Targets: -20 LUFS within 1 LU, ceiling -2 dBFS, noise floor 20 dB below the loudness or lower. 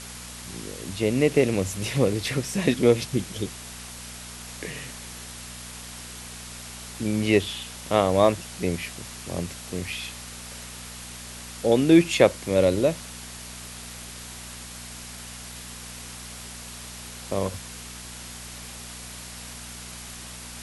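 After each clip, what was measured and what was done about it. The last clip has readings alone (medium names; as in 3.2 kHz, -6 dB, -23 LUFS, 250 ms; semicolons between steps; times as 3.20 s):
hum 60 Hz; highest harmonic 240 Hz; hum level -42 dBFS; noise floor -40 dBFS; noise floor target -45 dBFS; loudness -24.5 LUFS; peak level -1.5 dBFS; loudness target -20.0 LUFS
-> de-hum 60 Hz, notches 4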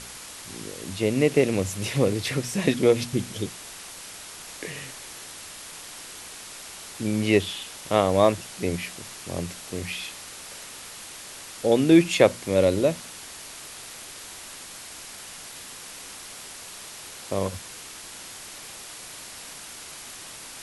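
hum not found; noise floor -42 dBFS; noise floor target -45 dBFS
-> noise print and reduce 6 dB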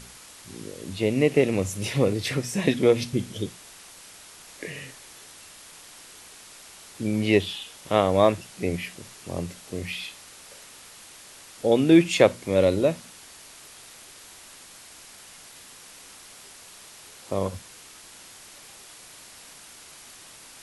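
noise floor -47 dBFS; loudness -24.0 LUFS; peak level -2.0 dBFS; loudness target -20.0 LUFS
-> trim +4 dB; peak limiter -2 dBFS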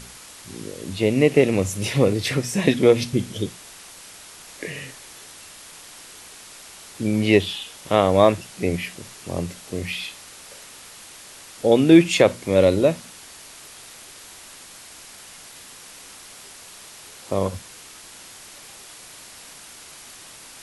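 loudness -20.5 LUFS; peak level -2.0 dBFS; noise floor -43 dBFS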